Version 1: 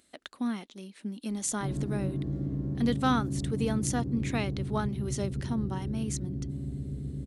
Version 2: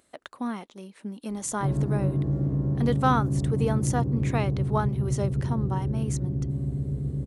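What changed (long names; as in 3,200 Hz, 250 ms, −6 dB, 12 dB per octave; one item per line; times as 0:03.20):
background +3.0 dB
master: add octave-band graphic EQ 125/250/500/1,000/4,000 Hz +6/−3/+5/+7/−4 dB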